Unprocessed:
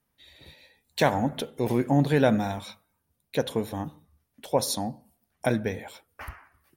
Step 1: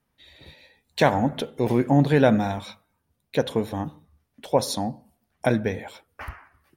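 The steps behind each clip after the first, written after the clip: treble shelf 7.2 kHz -9.5 dB; trim +3.5 dB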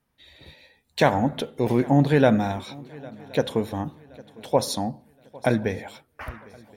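shuffle delay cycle 1072 ms, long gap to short 3:1, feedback 32%, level -23 dB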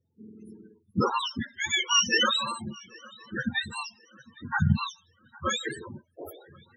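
spectrum inverted on a logarithmic axis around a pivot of 900 Hz; loudest bins only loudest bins 16

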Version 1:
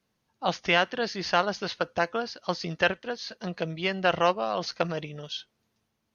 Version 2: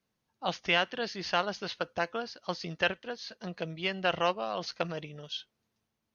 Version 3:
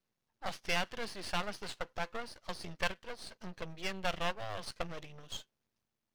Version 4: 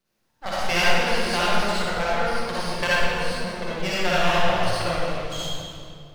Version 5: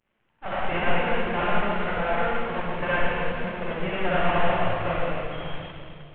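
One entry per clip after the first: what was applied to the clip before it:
dynamic bell 3 kHz, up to +4 dB, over -41 dBFS, Q 1.7; trim -5.5 dB
half-wave rectifier; trim -1 dB
reverberation RT60 2.4 s, pre-delay 46 ms, DRR -9 dB; trim +6.5 dB
CVSD coder 16 kbps

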